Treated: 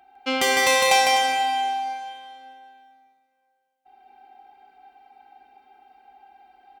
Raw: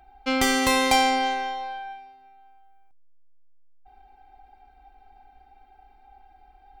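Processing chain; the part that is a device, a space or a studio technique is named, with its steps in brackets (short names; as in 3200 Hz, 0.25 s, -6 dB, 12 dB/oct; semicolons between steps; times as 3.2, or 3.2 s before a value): stadium PA (HPF 220 Hz 12 dB/oct; bell 2900 Hz +5 dB 0.3 oct; loudspeakers at several distances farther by 53 m -3 dB, 86 m -10 dB; reverb RT60 2.3 s, pre-delay 21 ms, DRR 5 dB)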